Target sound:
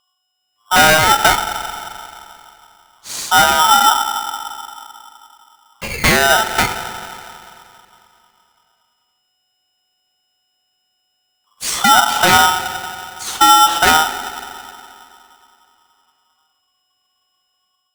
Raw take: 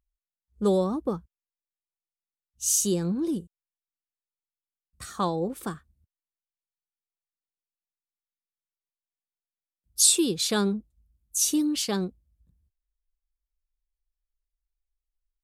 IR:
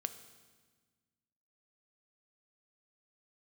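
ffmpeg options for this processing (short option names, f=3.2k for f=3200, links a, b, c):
-filter_complex "[0:a]aeval=exprs='val(0)+0.001*sin(2*PI*4700*n/s)':c=same,acrossover=split=210|2900[a][b][c];[b]dynaudnorm=f=160:g=5:m=15.5dB[d];[a][d][c]amix=inputs=3:normalize=0,asetrate=37926,aresample=44100,highshelf=f=2.5k:t=q:w=3:g=-8.5,aeval=exprs='0.944*sin(PI/2*2.51*val(0)/0.944)':c=same[e];[1:a]atrim=start_sample=2205,asetrate=23373,aresample=44100[f];[e][f]afir=irnorm=-1:irlink=0,aeval=exprs='val(0)*sgn(sin(2*PI*1100*n/s))':c=same,volume=-8dB"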